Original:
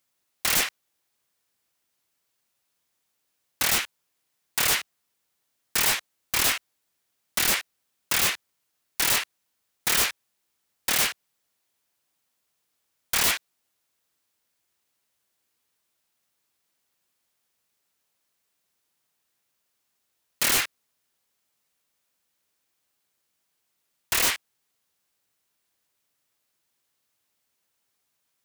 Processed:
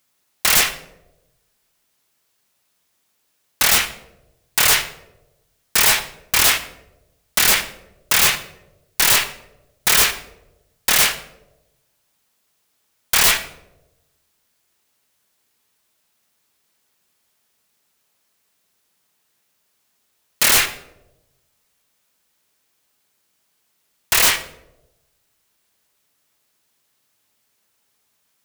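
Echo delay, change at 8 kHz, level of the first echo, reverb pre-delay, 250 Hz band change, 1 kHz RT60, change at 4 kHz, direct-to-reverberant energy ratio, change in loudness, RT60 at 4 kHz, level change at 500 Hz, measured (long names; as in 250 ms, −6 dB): no echo audible, +8.5 dB, no echo audible, 5 ms, +5.0 dB, 0.80 s, +8.5 dB, 9.0 dB, +8.0 dB, 0.50 s, +7.5 dB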